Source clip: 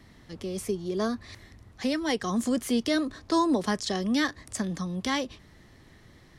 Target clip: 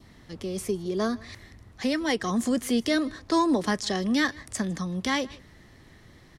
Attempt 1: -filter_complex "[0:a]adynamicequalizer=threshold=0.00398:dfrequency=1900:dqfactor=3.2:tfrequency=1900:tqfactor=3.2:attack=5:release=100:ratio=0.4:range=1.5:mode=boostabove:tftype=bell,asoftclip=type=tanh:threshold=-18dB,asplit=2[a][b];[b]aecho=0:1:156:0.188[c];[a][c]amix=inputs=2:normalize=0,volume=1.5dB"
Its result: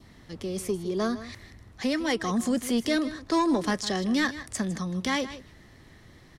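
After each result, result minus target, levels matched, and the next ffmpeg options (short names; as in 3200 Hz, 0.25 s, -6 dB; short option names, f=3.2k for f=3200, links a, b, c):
soft clip: distortion +12 dB; echo-to-direct +9.5 dB
-filter_complex "[0:a]adynamicequalizer=threshold=0.00398:dfrequency=1900:dqfactor=3.2:tfrequency=1900:tqfactor=3.2:attack=5:release=100:ratio=0.4:range=1.5:mode=boostabove:tftype=bell,asoftclip=type=tanh:threshold=-11dB,asplit=2[a][b];[b]aecho=0:1:156:0.188[c];[a][c]amix=inputs=2:normalize=0,volume=1.5dB"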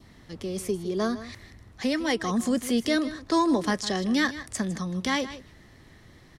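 echo-to-direct +9.5 dB
-filter_complex "[0:a]adynamicequalizer=threshold=0.00398:dfrequency=1900:dqfactor=3.2:tfrequency=1900:tqfactor=3.2:attack=5:release=100:ratio=0.4:range=1.5:mode=boostabove:tftype=bell,asoftclip=type=tanh:threshold=-11dB,asplit=2[a][b];[b]aecho=0:1:156:0.0631[c];[a][c]amix=inputs=2:normalize=0,volume=1.5dB"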